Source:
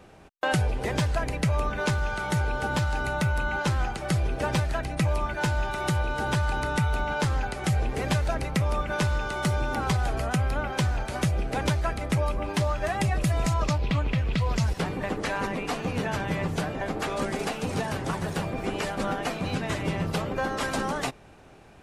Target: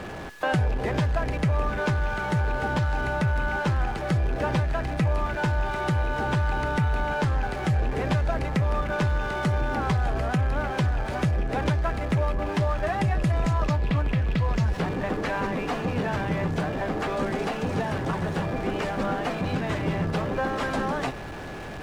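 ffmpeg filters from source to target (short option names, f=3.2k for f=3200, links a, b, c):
-af "aeval=exprs='val(0)+0.5*0.0282*sgn(val(0))':c=same,aeval=exprs='val(0)+0.00631*sin(2*PI*1700*n/s)':c=same,aemphasis=mode=reproduction:type=75kf"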